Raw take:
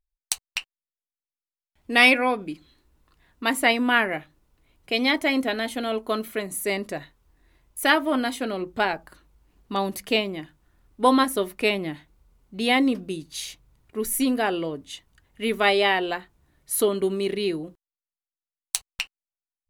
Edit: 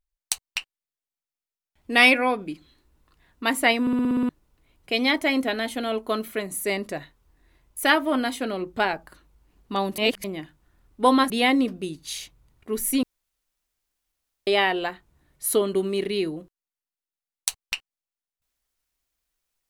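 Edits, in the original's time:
3.81 s: stutter in place 0.06 s, 8 plays
9.98–10.24 s: reverse
11.30–12.57 s: delete
14.30–15.74 s: room tone

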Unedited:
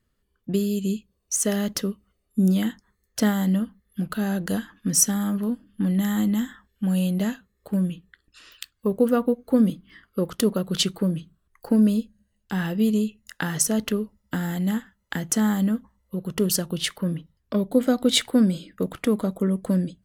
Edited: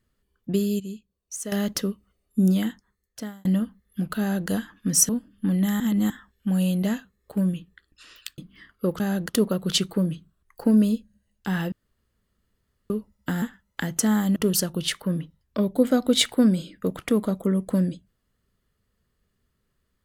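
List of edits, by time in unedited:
0.80–1.52 s: gain -10 dB
2.50–3.45 s: fade out
4.20–4.49 s: copy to 10.34 s
5.09–5.45 s: delete
6.16–6.46 s: reverse
8.74–9.72 s: delete
12.77–13.95 s: room tone
14.47–14.75 s: delete
15.69–16.32 s: delete

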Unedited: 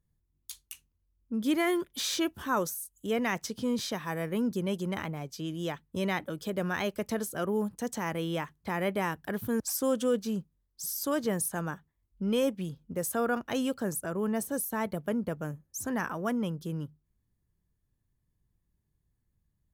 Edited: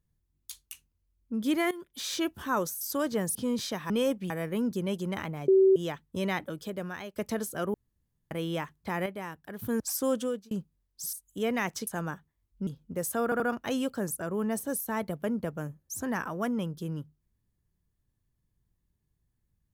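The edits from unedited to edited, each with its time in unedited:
1.71–2.27 s: fade in, from -16.5 dB
2.81–3.55 s: swap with 10.93–11.47 s
5.28–5.56 s: bleep 383 Hz -16.5 dBFS
6.24–6.96 s: fade out, to -14 dB
7.54–8.11 s: room tone
8.86–9.39 s: gain -8 dB
9.95–10.31 s: fade out
12.27–12.67 s: move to 4.10 s
13.24 s: stutter 0.08 s, 3 plays

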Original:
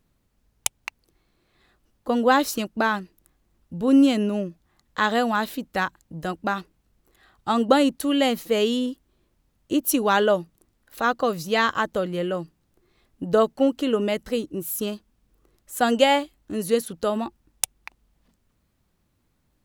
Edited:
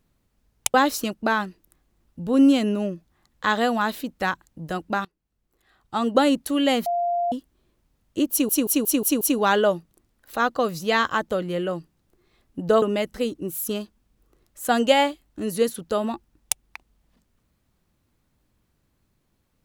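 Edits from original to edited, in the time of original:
0.74–2.28 s: delete
6.59–7.86 s: fade in, from -23.5 dB
8.40–8.86 s: bleep 696 Hz -20.5 dBFS
9.85 s: stutter 0.18 s, 6 plays
13.46–13.94 s: delete

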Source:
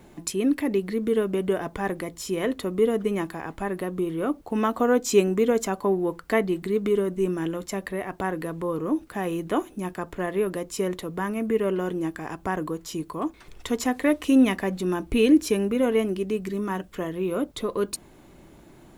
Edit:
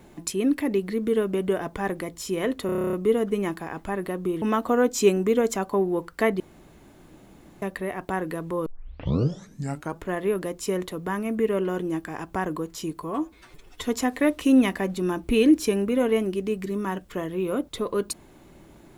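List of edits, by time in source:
2.66 s: stutter 0.03 s, 10 plays
4.15–4.53 s: delete
6.51–7.73 s: room tone
8.77 s: tape start 1.37 s
13.14–13.70 s: stretch 1.5×

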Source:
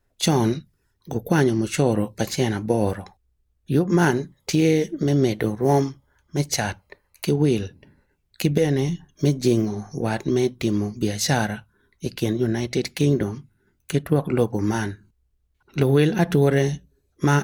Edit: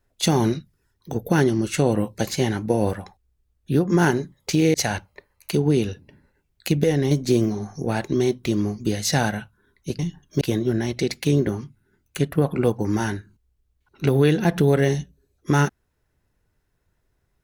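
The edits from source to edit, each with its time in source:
4.74–6.48 s: delete
8.85–9.27 s: move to 12.15 s

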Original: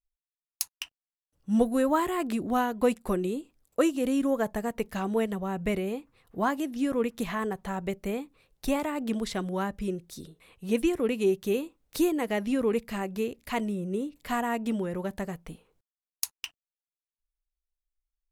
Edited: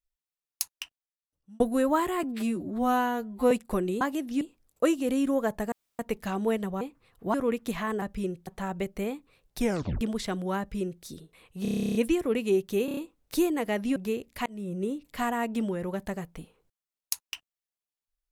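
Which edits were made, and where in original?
0.68–1.60 s: fade out
2.23–2.87 s: stretch 2×
4.68 s: insert room tone 0.27 s
5.50–5.93 s: delete
6.46–6.86 s: move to 3.37 s
8.66 s: tape stop 0.42 s
9.66–10.11 s: copy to 7.54 s
10.69 s: stutter 0.03 s, 12 plays
11.59 s: stutter 0.03 s, 5 plays
12.58–13.07 s: delete
13.57–13.84 s: fade in

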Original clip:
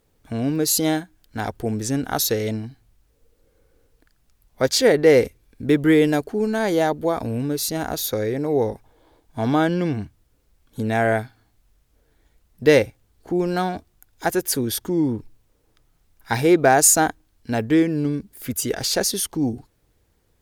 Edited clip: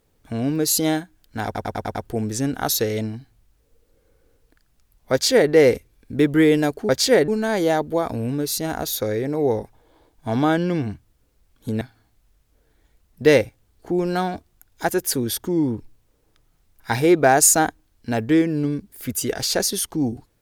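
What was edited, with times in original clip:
1.45 s: stutter 0.10 s, 6 plays
4.62–5.01 s: copy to 6.39 s
10.92–11.22 s: delete

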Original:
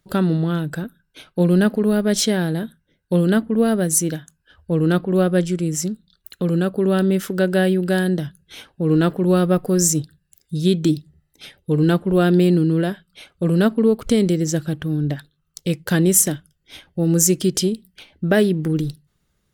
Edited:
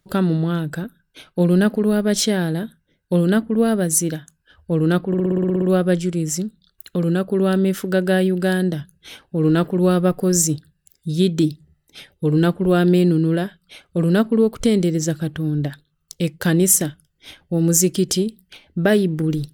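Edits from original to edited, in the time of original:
5.08 s: stutter 0.06 s, 10 plays

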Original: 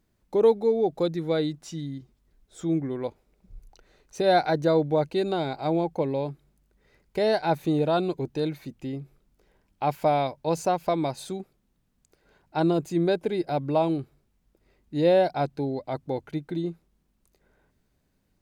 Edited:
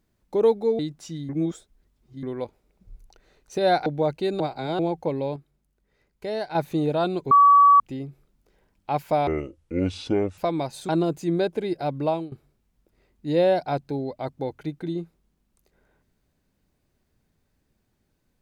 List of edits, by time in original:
0.79–1.42 s: delete
1.92–2.86 s: reverse
4.49–4.79 s: delete
5.33–5.72 s: reverse
6.29–7.48 s: gain -6 dB
8.24–8.73 s: bleep 1.14 kHz -10.5 dBFS
10.20–10.82 s: speed 56%
11.33–12.57 s: delete
13.75–14.00 s: fade out, to -19 dB

